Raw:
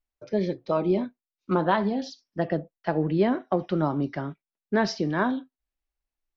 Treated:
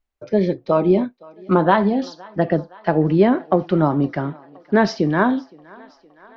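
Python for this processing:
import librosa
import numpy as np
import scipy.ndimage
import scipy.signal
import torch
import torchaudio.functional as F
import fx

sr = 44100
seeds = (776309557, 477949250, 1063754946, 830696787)

y = fx.high_shelf(x, sr, hz=4300.0, db=-9.5)
y = fx.echo_thinned(y, sr, ms=516, feedback_pct=72, hz=350.0, wet_db=-23.5)
y = y * librosa.db_to_amplitude(8.0)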